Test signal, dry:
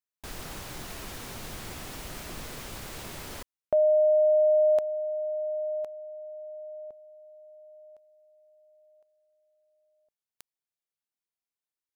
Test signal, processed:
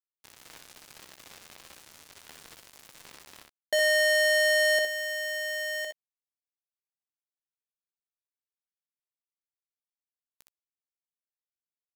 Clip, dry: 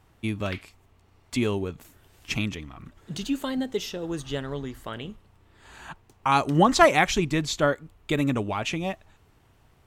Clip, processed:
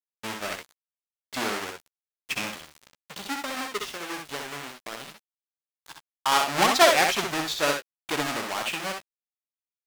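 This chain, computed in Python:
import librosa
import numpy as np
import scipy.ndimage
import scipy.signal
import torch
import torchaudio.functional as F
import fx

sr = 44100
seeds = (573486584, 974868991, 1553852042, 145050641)

p1 = fx.halfwave_hold(x, sr)
p2 = fx.weighting(p1, sr, curve='A')
p3 = np.where(np.abs(p2) >= 10.0 ** (-30.0 / 20.0), p2, 0.0)
p4 = p3 + fx.room_early_taps(p3, sr, ms=(15, 63, 76), db=(-14.5, -5.0, -12.0), dry=0)
y = F.gain(torch.from_numpy(p4), -4.5).numpy()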